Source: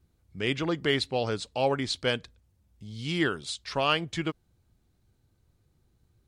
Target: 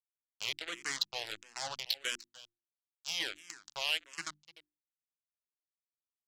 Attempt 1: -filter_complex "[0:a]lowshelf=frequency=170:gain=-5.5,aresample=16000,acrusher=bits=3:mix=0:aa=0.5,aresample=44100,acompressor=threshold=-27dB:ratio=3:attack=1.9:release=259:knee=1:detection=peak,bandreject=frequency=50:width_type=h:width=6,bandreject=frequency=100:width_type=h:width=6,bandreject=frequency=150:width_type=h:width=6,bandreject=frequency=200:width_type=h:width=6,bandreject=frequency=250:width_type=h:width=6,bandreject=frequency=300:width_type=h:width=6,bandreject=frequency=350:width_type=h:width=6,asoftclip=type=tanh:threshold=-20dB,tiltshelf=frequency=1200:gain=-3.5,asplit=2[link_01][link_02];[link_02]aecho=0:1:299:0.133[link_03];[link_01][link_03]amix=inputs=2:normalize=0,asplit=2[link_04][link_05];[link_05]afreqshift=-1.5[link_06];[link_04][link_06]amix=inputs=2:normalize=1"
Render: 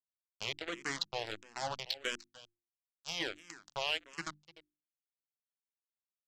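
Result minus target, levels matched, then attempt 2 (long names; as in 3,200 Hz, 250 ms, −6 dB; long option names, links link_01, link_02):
soft clipping: distortion −8 dB; 1,000 Hz band +5.0 dB
-filter_complex "[0:a]lowshelf=frequency=170:gain=-5.5,aresample=16000,acrusher=bits=3:mix=0:aa=0.5,aresample=44100,acompressor=threshold=-27dB:ratio=3:attack=1.9:release=259:knee=1:detection=peak,bandreject=frequency=50:width_type=h:width=6,bandreject=frequency=100:width_type=h:width=6,bandreject=frequency=150:width_type=h:width=6,bandreject=frequency=200:width_type=h:width=6,bandreject=frequency=250:width_type=h:width=6,bandreject=frequency=300:width_type=h:width=6,bandreject=frequency=350:width_type=h:width=6,asoftclip=type=tanh:threshold=-26dB,tiltshelf=frequency=1200:gain=-10.5,asplit=2[link_01][link_02];[link_02]aecho=0:1:299:0.133[link_03];[link_01][link_03]amix=inputs=2:normalize=0,asplit=2[link_04][link_05];[link_05]afreqshift=-1.5[link_06];[link_04][link_06]amix=inputs=2:normalize=1"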